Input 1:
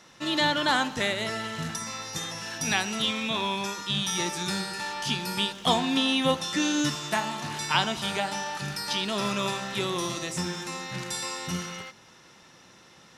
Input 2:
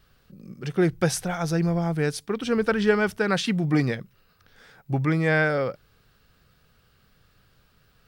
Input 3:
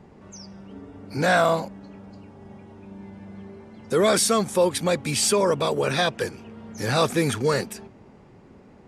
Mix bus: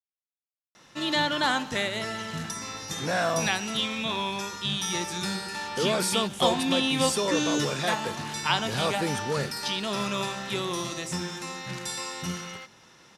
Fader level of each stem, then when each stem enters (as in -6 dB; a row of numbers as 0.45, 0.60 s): -1.0 dB, off, -7.5 dB; 0.75 s, off, 1.85 s